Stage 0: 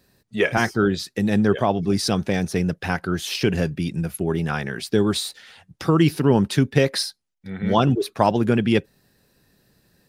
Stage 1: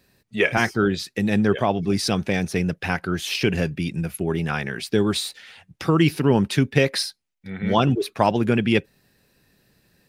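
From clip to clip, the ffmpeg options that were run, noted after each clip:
ffmpeg -i in.wav -af "equalizer=frequency=2400:width_type=o:width=0.71:gain=5.5,volume=-1dB" out.wav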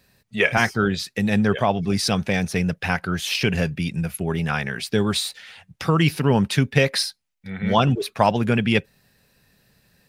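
ffmpeg -i in.wav -af "equalizer=frequency=330:width=2.3:gain=-8,volume=2dB" out.wav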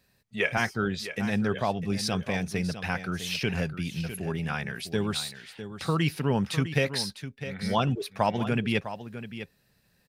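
ffmpeg -i in.wav -af "aecho=1:1:654:0.266,volume=-7.5dB" out.wav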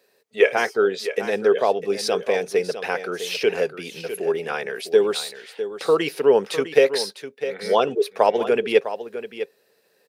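ffmpeg -i in.wav -af "highpass=frequency=440:width_type=q:width=4.9,volume=3.5dB" out.wav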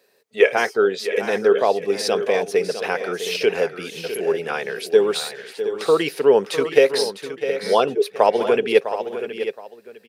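ffmpeg -i in.wav -af "aecho=1:1:720:0.266,volume=1.5dB" out.wav

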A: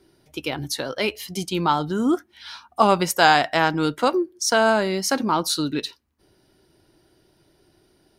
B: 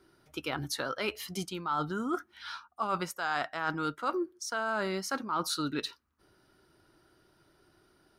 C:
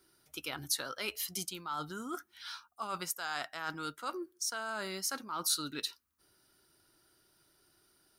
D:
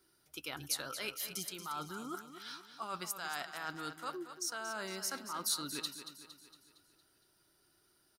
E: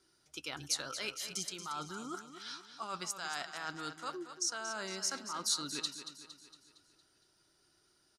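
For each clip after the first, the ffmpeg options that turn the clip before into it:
ffmpeg -i in.wav -af "equalizer=frequency=1300:width=2.2:gain=12,areverse,acompressor=threshold=-22dB:ratio=10,areverse,volume=-6.5dB" out.wav
ffmpeg -i in.wav -af "crystalizer=i=4.5:c=0,volume=-9dB" out.wav
ffmpeg -i in.wav -af "aecho=1:1:230|460|690|920|1150|1380:0.299|0.152|0.0776|0.0396|0.0202|0.0103,volume=-3dB" out.wav
ffmpeg -i in.wav -af "lowpass=frequency=7000:width_type=q:width=1.8" out.wav

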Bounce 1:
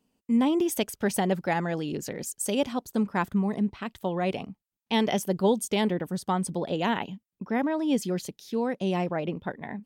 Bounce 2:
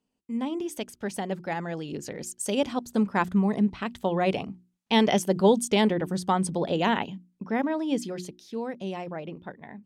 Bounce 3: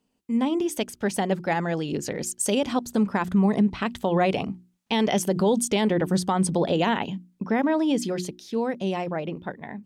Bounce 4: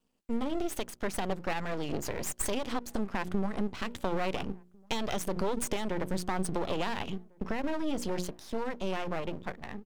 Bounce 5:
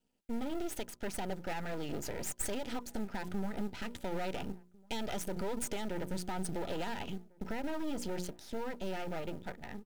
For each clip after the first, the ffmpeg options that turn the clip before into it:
ffmpeg -i in.wav -af "lowpass=10000,bandreject=frequency=60:width_type=h:width=6,bandreject=frequency=120:width_type=h:width=6,bandreject=frequency=180:width_type=h:width=6,bandreject=frequency=240:width_type=h:width=6,bandreject=frequency=300:width_type=h:width=6,bandreject=frequency=360:width_type=h:width=6,dynaudnorm=framelen=230:gausssize=21:maxgain=12dB,volume=-6.5dB" out.wav
ffmpeg -i in.wav -af "alimiter=limit=-20dB:level=0:latency=1:release=100,volume=6.5dB" out.wav
ffmpeg -i in.wav -filter_complex "[0:a]acompressor=threshold=-24dB:ratio=6,aeval=exprs='max(val(0),0)':channel_layout=same,asplit=2[link_01][link_02];[link_02]adelay=1399,volume=-28dB,highshelf=frequency=4000:gain=-31.5[link_03];[link_01][link_03]amix=inputs=2:normalize=0" out.wav
ffmpeg -i in.wav -filter_complex "[0:a]acrossover=split=7600[link_01][link_02];[link_01]asoftclip=type=tanh:threshold=-23.5dB[link_03];[link_03][link_02]amix=inputs=2:normalize=0,acrusher=bits=7:mode=log:mix=0:aa=0.000001,asuperstop=centerf=1100:order=20:qfactor=6.3,volume=-3dB" out.wav

